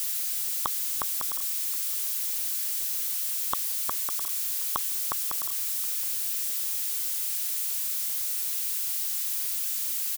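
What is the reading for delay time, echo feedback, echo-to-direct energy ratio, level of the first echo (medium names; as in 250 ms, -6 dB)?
719 ms, no regular repeats, -22.0 dB, -22.0 dB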